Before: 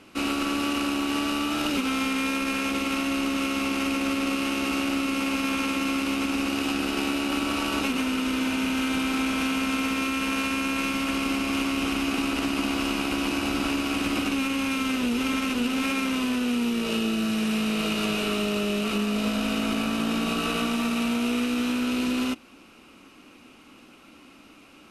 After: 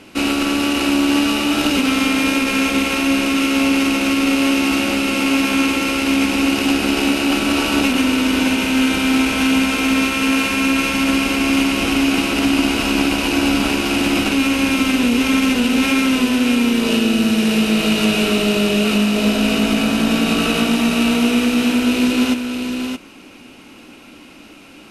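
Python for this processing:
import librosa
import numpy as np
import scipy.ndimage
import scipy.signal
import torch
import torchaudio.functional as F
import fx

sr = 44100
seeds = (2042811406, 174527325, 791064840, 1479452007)

y = fx.peak_eq(x, sr, hz=1200.0, db=-7.5, octaves=0.27)
y = y + 10.0 ** (-6.0 / 20.0) * np.pad(y, (int(622 * sr / 1000.0), 0))[:len(y)]
y = F.gain(torch.from_numpy(y), 9.0).numpy()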